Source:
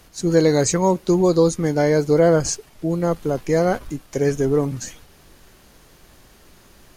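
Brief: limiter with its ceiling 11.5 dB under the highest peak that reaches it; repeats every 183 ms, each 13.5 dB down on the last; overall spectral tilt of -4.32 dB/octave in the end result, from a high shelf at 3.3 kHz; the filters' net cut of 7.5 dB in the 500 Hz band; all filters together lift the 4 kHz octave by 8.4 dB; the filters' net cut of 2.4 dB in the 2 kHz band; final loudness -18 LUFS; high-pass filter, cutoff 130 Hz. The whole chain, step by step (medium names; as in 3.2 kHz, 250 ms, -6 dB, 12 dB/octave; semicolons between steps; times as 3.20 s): high-pass 130 Hz; peaking EQ 500 Hz -9 dB; peaking EQ 2 kHz -5.5 dB; treble shelf 3.3 kHz +6.5 dB; peaking EQ 4 kHz +6 dB; peak limiter -13.5 dBFS; feedback delay 183 ms, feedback 21%, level -13.5 dB; trim +6.5 dB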